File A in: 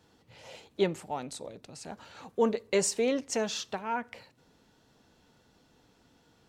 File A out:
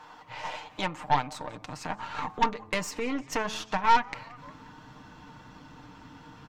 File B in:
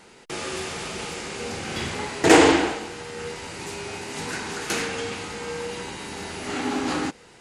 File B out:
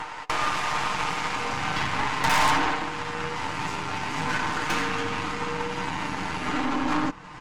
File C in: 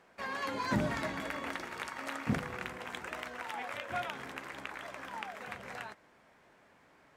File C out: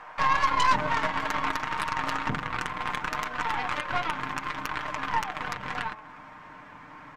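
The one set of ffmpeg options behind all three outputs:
-filter_complex "[0:a]afftfilt=real='re*lt(hypot(re,im),0.708)':imag='im*lt(hypot(re,im),0.708)':win_size=1024:overlap=0.75,asubboost=boost=10.5:cutoff=220,asplit=5[link_01][link_02][link_03][link_04][link_05];[link_02]adelay=178,afreqshift=-120,volume=-22.5dB[link_06];[link_03]adelay=356,afreqshift=-240,volume=-28dB[link_07];[link_04]adelay=534,afreqshift=-360,volume=-33.5dB[link_08];[link_05]adelay=712,afreqshift=-480,volume=-39dB[link_09];[link_01][link_06][link_07][link_08][link_09]amix=inputs=5:normalize=0,asplit=2[link_10][link_11];[link_11]highpass=frequency=720:poles=1,volume=23dB,asoftclip=type=tanh:threshold=0dB[link_12];[link_10][link_12]amix=inputs=2:normalize=0,lowpass=frequency=2400:poles=1,volume=-6dB,bandreject=frequency=108.5:width_type=h:width=4,bandreject=frequency=217:width_type=h:width=4,bandreject=frequency=325.5:width_type=h:width=4,bandreject=frequency=434:width_type=h:width=4,bandreject=frequency=542.5:width_type=h:width=4,bandreject=frequency=651:width_type=h:width=4,bandreject=frequency=759.5:width_type=h:width=4,bandreject=frequency=868:width_type=h:width=4,bandreject=frequency=976.5:width_type=h:width=4,bandreject=frequency=1085:width_type=h:width=4,bandreject=frequency=1193.5:width_type=h:width=4,acompressor=threshold=-41dB:ratio=2,equalizer=frequency=160:width_type=o:width=0.67:gain=-7,equalizer=frequency=400:width_type=o:width=0.67:gain=-10,equalizer=frequency=1000:width_type=o:width=0.67:gain=11,equalizer=frequency=4000:width_type=o:width=0.67:gain=-4,equalizer=frequency=10000:width_type=o:width=0.67:gain=-8,aeval=exprs='0.168*(cos(1*acos(clip(val(0)/0.168,-1,1)))-cos(1*PI/2))+0.0596*(cos(5*acos(clip(val(0)/0.168,-1,1)))-cos(5*PI/2))+0.0299*(cos(6*acos(clip(val(0)/0.168,-1,1)))-cos(6*PI/2))+0.0422*(cos(7*acos(clip(val(0)/0.168,-1,1)))-cos(7*PI/2))':channel_layout=same,aecho=1:1:6.6:0.51" -ar 48000 -c:a libvorbis -b:a 128k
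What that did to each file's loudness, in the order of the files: +1.0, −1.5, +10.0 LU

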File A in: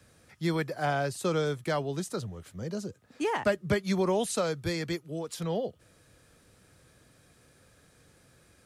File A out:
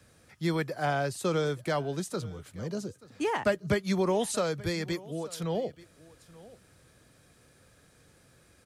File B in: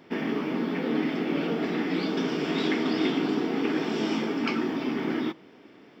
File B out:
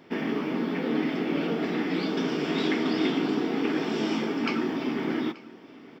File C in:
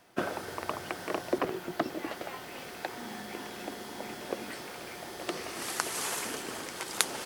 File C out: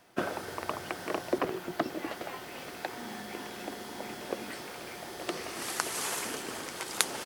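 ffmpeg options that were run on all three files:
-af "aecho=1:1:881:0.0944"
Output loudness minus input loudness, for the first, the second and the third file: 0.0, 0.0, 0.0 LU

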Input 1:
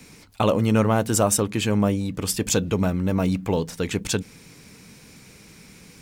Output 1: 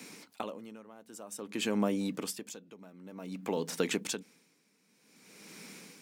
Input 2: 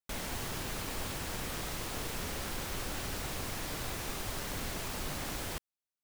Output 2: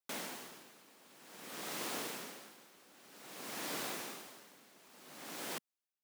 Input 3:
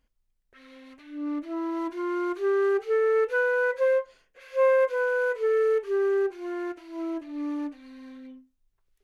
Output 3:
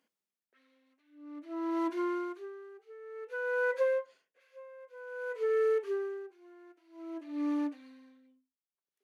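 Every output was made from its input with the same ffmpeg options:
-af "highpass=frequency=200:width=0.5412,highpass=frequency=200:width=1.3066,acompressor=threshold=-25dB:ratio=6,aeval=exprs='val(0)*pow(10,-23*(0.5-0.5*cos(2*PI*0.53*n/s))/20)':channel_layout=same"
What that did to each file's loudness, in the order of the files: −13.0, −5.5, −7.5 LU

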